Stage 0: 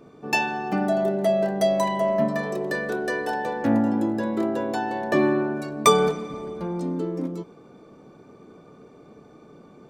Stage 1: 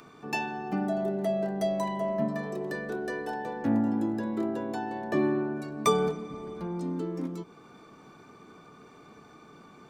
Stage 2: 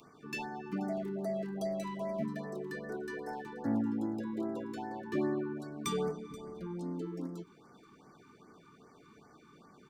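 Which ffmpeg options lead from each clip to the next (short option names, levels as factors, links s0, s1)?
-filter_complex "[0:a]tiltshelf=f=770:g=3,acrossover=split=590|880[s0][s1][s2];[s2]acompressor=mode=upward:threshold=0.0158:ratio=2.5[s3];[s0][s1][s3]amix=inputs=3:normalize=0,equalizer=f=550:w=4.8:g=-5.5,volume=0.447"
-filter_complex "[0:a]acrossover=split=630|2200[s0][s1][s2];[s1]volume=53.1,asoftclip=hard,volume=0.0188[s3];[s2]aecho=1:1:480:0.119[s4];[s0][s3][s4]amix=inputs=3:normalize=0,afftfilt=real='re*(1-between(b*sr/1024,560*pow(3300/560,0.5+0.5*sin(2*PI*2.5*pts/sr))/1.41,560*pow(3300/560,0.5+0.5*sin(2*PI*2.5*pts/sr))*1.41))':imag='im*(1-between(b*sr/1024,560*pow(3300/560,0.5+0.5*sin(2*PI*2.5*pts/sr))/1.41,560*pow(3300/560,0.5+0.5*sin(2*PI*2.5*pts/sr))*1.41))':win_size=1024:overlap=0.75,volume=0.501"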